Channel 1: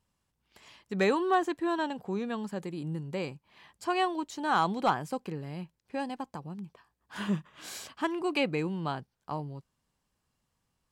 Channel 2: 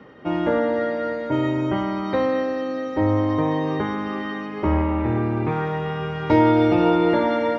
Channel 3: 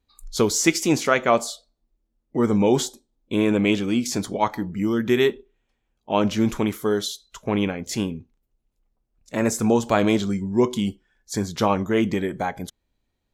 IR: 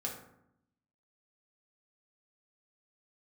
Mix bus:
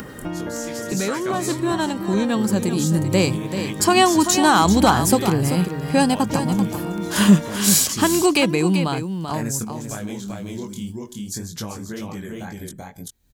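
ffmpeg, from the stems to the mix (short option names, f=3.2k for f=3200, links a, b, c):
-filter_complex "[0:a]alimiter=limit=-22.5dB:level=0:latency=1:release=148,equalizer=f=150:t=o:w=0.29:g=-7,dynaudnorm=f=240:g=21:m=13dB,volume=2dB,asplit=3[a][b][c];[b]volume=-9.5dB[d];[1:a]volume=-9.5dB[e];[2:a]flanger=delay=18:depth=7:speed=1.9,volume=-5.5dB,asplit=2[f][g];[g]volume=-16.5dB[h];[c]apad=whole_len=587929[i];[f][i]sidechaingate=range=-13dB:threshold=-43dB:ratio=16:detection=peak[j];[e][j]amix=inputs=2:normalize=0,equalizer=f=1.6k:w=4.3:g=7.5,acompressor=threshold=-29dB:ratio=4,volume=0dB[k];[d][h]amix=inputs=2:normalize=0,aecho=0:1:388:1[l];[a][k][l]amix=inputs=3:normalize=0,highshelf=f=8.6k:g=8,acompressor=mode=upward:threshold=-26dB:ratio=2.5,bass=f=250:g=9,treble=f=4k:g=11"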